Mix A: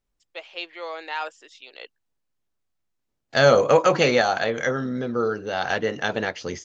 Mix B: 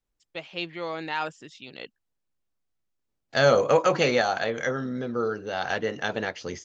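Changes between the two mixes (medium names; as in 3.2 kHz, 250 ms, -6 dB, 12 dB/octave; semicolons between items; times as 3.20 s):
first voice: remove high-pass 430 Hz 24 dB/octave; second voice -3.5 dB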